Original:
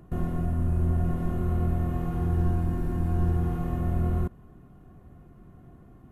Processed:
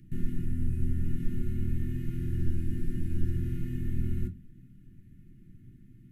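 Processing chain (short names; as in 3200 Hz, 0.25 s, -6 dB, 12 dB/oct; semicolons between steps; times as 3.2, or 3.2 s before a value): elliptic band-stop 290–1900 Hz, stop band 60 dB; reverb RT60 0.30 s, pre-delay 5 ms, DRR 5 dB; gain -3 dB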